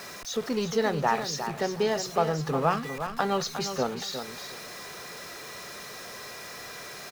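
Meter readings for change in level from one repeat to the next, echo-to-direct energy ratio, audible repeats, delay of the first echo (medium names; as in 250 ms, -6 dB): -14.0 dB, -9.0 dB, 2, 358 ms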